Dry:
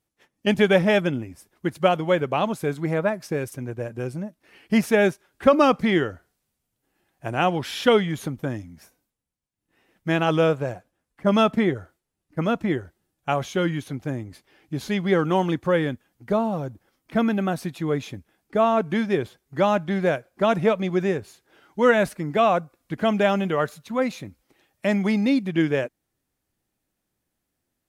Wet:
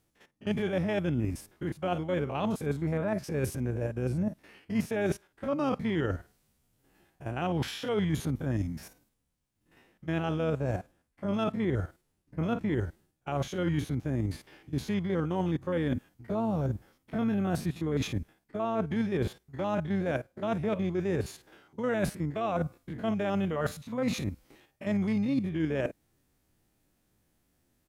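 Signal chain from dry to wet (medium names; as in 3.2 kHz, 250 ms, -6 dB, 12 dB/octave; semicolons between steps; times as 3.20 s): spectrogram pixelated in time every 50 ms; harmony voices -12 st -15 dB; reverse; compression 6:1, threshold -36 dBFS, peak gain reduction 21 dB; reverse; bass shelf 300 Hz +5 dB; trim +5.5 dB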